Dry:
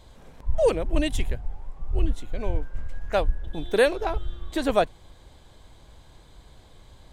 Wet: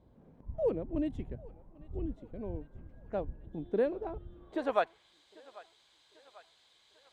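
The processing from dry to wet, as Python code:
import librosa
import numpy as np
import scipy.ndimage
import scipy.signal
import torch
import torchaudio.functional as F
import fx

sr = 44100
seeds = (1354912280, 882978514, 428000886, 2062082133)

y = fx.filter_sweep_bandpass(x, sr, from_hz=220.0, to_hz=3700.0, start_s=4.27, end_s=5.13, q=0.95)
y = fx.echo_thinned(y, sr, ms=793, feedback_pct=70, hz=560.0, wet_db=-20.0)
y = y * librosa.db_to_amplitude(-3.5)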